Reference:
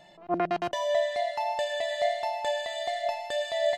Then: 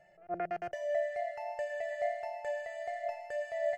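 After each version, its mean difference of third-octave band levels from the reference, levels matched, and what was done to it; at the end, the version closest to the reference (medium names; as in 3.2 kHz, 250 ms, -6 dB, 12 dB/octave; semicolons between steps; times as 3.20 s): 4.5 dB: treble shelf 6.6 kHz -11.5 dB; static phaser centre 1 kHz, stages 6; trim -6 dB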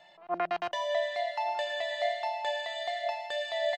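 3.0 dB: three-band isolator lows -14 dB, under 600 Hz, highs -12 dB, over 5.2 kHz; on a send: delay 1152 ms -23.5 dB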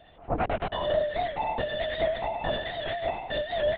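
11.0 dB: LPC vocoder at 8 kHz whisper; warped record 78 rpm, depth 100 cents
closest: second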